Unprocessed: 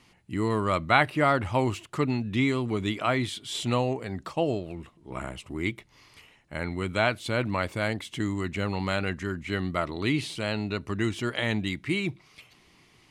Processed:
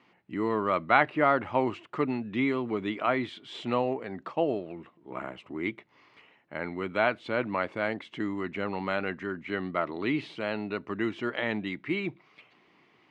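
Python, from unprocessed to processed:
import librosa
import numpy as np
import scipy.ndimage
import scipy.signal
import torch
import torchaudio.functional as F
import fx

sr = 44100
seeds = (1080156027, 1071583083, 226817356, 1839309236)

y = fx.bandpass_edges(x, sr, low_hz=230.0, high_hz=2300.0)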